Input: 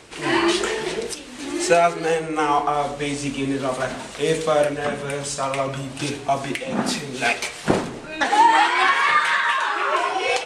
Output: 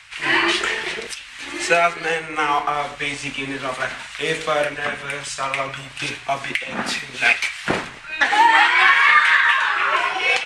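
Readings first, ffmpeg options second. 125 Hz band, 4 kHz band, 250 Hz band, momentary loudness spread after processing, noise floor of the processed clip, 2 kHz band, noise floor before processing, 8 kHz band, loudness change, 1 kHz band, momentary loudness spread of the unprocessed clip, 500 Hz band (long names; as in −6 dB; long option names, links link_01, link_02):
−6.0 dB, +3.5 dB, −6.0 dB, 14 LU, −38 dBFS, +6.5 dB, −36 dBFS, −2.0 dB, +2.5 dB, 0.0 dB, 11 LU, −4.0 dB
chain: -filter_complex "[0:a]equalizer=frequency=2100:width=0.66:gain=12,acrossover=split=130|910[link_01][link_02][link_03];[link_02]aeval=exprs='sgn(val(0))*max(abs(val(0))-0.0237,0)':channel_layout=same[link_04];[link_01][link_04][link_03]amix=inputs=3:normalize=0,volume=-4.5dB"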